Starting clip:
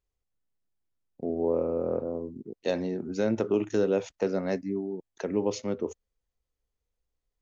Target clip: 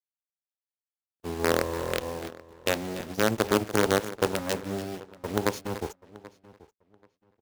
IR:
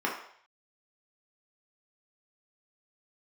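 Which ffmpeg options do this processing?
-filter_complex "[0:a]acrusher=bits=4:dc=4:mix=0:aa=0.000001,asplit=2[a][b];[b]aecho=0:1:291:0.2[c];[a][c]amix=inputs=2:normalize=0,agate=range=-46dB:threshold=-36dB:ratio=16:detection=peak,highpass=54,asplit=2[d][e];[e]adelay=783,lowpass=f=3.5k:p=1,volume=-20dB,asplit=2[f][g];[g]adelay=783,lowpass=f=3.5k:p=1,volume=0.22[h];[f][h]amix=inputs=2:normalize=0[i];[d][i]amix=inputs=2:normalize=0,volume=2dB"

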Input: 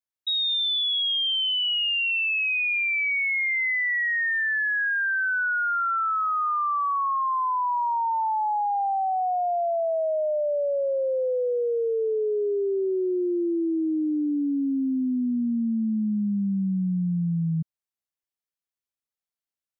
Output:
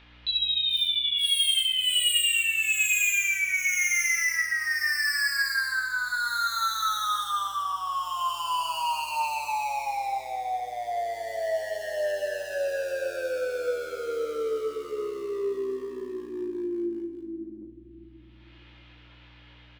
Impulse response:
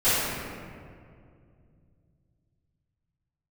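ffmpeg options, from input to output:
-filter_complex "[0:a]aecho=1:1:2.6:0.34,acompressor=mode=upward:threshold=-27dB:ratio=2.5,highpass=f=170:t=q:w=0.5412,highpass=f=170:t=q:w=1.307,lowpass=f=3.1k:t=q:w=0.5176,lowpass=f=3.1k:t=q:w=0.7071,lowpass=f=3.1k:t=q:w=1.932,afreqshift=160,asplit=3[a][b][c];[b]asetrate=29433,aresample=44100,atempo=1.49831,volume=-17dB[d];[c]asetrate=37084,aresample=44100,atempo=1.18921,volume=-13dB[e];[a][d][e]amix=inputs=3:normalize=0,asoftclip=type=hard:threshold=-25dB,aeval=exprs='val(0)+0.00158*(sin(2*PI*60*n/s)+sin(2*PI*2*60*n/s)/2+sin(2*PI*3*60*n/s)/3+sin(2*PI*4*60*n/s)/4+sin(2*PI*5*60*n/s)/5)':c=same,alimiter=level_in=8dB:limit=-24dB:level=0:latency=1,volume=-8dB,aecho=1:1:20|43|69.45|99.87|134.8:0.631|0.398|0.251|0.158|0.1,asplit=2[f][g];[1:a]atrim=start_sample=2205,adelay=100[h];[g][h]afir=irnorm=-1:irlink=0,volume=-27dB[i];[f][i]amix=inputs=2:normalize=0,crystalizer=i=4.5:c=0"

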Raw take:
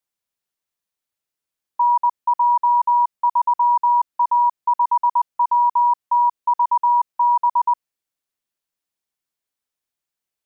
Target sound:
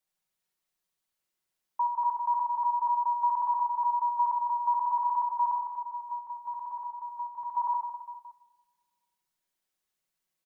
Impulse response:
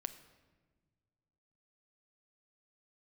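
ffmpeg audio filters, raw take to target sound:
-filter_complex "[0:a]aecho=1:1:5.4:0.46,alimiter=limit=-20.5dB:level=0:latency=1:release=32,asettb=1/sr,asplit=3[a][b][c];[a]atrim=end=5.564[d];[b]atrim=start=5.56:end=7.57,asetpts=PTS-STARTPTS,afade=t=in:d=0.004:c=qsin,afade=t=out:st=2.006:d=0.004:c=qsin,equalizer=f=980:t=o:w=2.4:g=-9.5[e];[c]atrim=start=7.566[f];[d][e]acrossfade=d=0.004:c1=hsin:c2=qsin[g];[g][f]acrossfade=d=0.004:c1=qsin:c2=hsin,aecho=1:1:70|157.5|266.9|403.6|574.5:0.631|0.398|0.251|0.158|0.1[h];[1:a]atrim=start_sample=2205[i];[h][i]afir=irnorm=-1:irlink=0"

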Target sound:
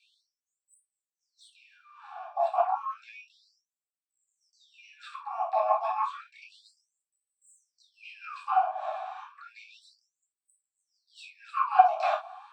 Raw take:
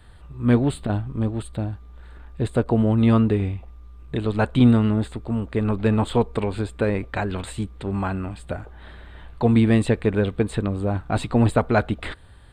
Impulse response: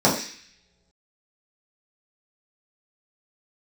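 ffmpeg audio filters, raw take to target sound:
-filter_complex "[0:a]areverse,acompressor=threshold=-28dB:ratio=10,areverse,asplit=2[a][b];[b]asetrate=88200,aresample=44100,atempo=0.5,volume=-7dB[c];[a][c]amix=inputs=2:normalize=0,asplit=3[d][e][f];[d]bandpass=f=730:t=q:w=8,volume=0dB[g];[e]bandpass=f=1.09k:t=q:w=8,volume=-6dB[h];[f]bandpass=f=2.44k:t=q:w=8,volume=-9dB[i];[g][h][i]amix=inputs=3:normalize=0[j];[1:a]atrim=start_sample=2205,afade=t=out:st=0.13:d=0.01,atrim=end_sample=6174[k];[j][k]afir=irnorm=-1:irlink=0,afftfilt=real='re*gte(b*sr/1024,590*pow(7900/590,0.5+0.5*sin(2*PI*0.31*pts/sr)))':imag='im*gte(b*sr/1024,590*pow(7900/590,0.5+0.5*sin(2*PI*0.31*pts/sr)))':win_size=1024:overlap=0.75,volume=2.5dB"

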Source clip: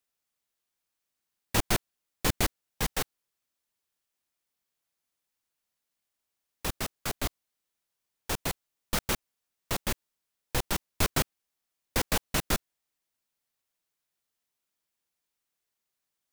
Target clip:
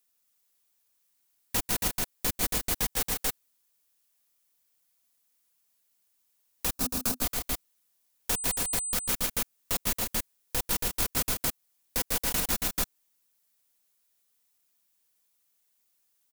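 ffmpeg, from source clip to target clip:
-filter_complex "[0:a]aecho=1:1:145.8|277:0.316|0.501,crystalizer=i=1.5:c=0,asettb=1/sr,asplit=3[a][b][c];[a]atrim=end=6.734[d];[b]atrim=start=6.73:end=7.23,asetpts=PTS-STARTPTS,afade=t=in:d=0.004:c=qsin,afade=t=out:st=0.496:d=0.004:c=qsin,equalizer=f=250:t=o:w=0.33:g=12,equalizer=f=2k:t=o:w=0.33:g=-11,equalizer=f=3.15k:t=o:w=0.33:g=-7[e];[c]atrim=start=7.226[f];[d][e]acrossfade=d=0.004:c1=hsin:c2=qsin[g];[g][f]acrossfade=d=0.004:c1=qsin:c2=hsin,asettb=1/sr,asplit=3[h][i][j];[h]atrim=end=8.324[k];[i]atrim=start=8.32:end=9.14,asetpts=PTS-STARTPTS,afade=t=in:d=0.004:c=qsin,afade=t=out:st=0.816:d=0.004:c=qsin,aeval=exprs='val(0)+0.02*sin(2*PI*8100*n/s)':c=same[l];[j]atrim=start=9.136[m];[k][l]acrossfade=d=0.004:c1=hsin:c2=qsin[n];[n][m]acrossfade=d=0.004:c1=qsin:c2=hsin,aecho=1:1:4.1:0.3,alimiter=limit=-17.5dB:level=0:latency=1:release=201,volume=1.5dB"

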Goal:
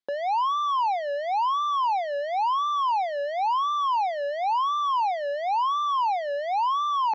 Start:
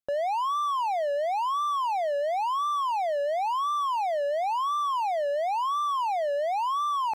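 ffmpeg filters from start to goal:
-af "highpass=300,equalizer=f=630:t=q:w=4:g=-10,equalizer=f=1.3k:t=q:w=4:g=-7,equalizer=f=2.6k:t=q:w=4:g=-7,lowpass=f=4.9k:w=0.5412,lowpass=f=4.9k:w=1.3066,volume=6dB"

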